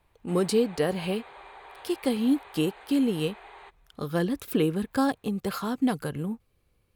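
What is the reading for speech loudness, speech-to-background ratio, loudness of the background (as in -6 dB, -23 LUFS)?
-28.0 LUFS, 20.0 dB, -48.0 LUFS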